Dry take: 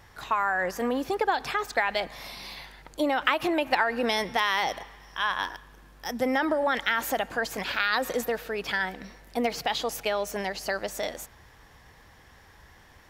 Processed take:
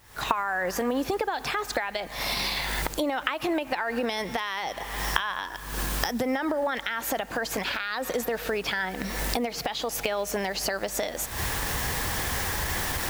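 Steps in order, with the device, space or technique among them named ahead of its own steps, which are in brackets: cheap recorder with automatic gain (white noise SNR 27 dB; recorder AGC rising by 73 dB/s); gain -6.5 dB

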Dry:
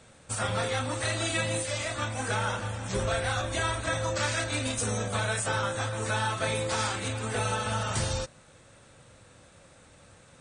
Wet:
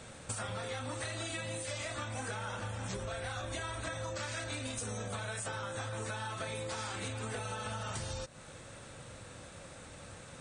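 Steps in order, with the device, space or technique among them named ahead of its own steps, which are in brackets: serial compression, leveller first (compressor 3:1, threshold -31 dBFS, peak gain reduction 5.5 dB; compressor 6:1, threshold -42 dBFS, peak gain reduction 12.5 dB); gain +5 dB

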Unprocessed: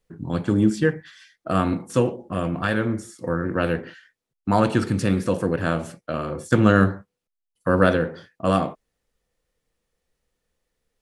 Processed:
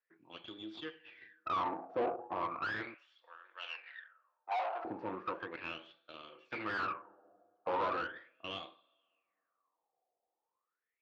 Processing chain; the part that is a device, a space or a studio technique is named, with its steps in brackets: two-slope reverb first 0.56 s, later 1.7 s, from -16 dB, DRR 12 dB; wah-wah guitar rig (wah 0.37 Hz 710–3600 Hz, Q 11; tube stage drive 43 dB, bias 0.75; speaker cabinet 100–4200 Hz, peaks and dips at 110 Hz +5 dB, 330 Hz +7 dB, 2500 Hz +5 dB); band shelf 570 Hz +8 dB 2.6 oct; 2.94–4.85 HPF 690 Hz 24 dB/oct; gain +5 dB

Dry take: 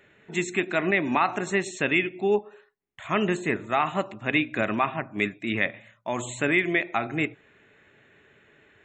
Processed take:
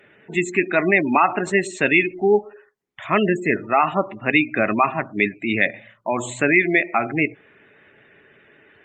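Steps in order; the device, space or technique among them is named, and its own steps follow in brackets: noise-suppressed video call (HPF 140 Hz 6 dB/oct; spectral gate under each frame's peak -20 dB strong; gain +7 dB; Opus 32 kbps 48000 Hz)

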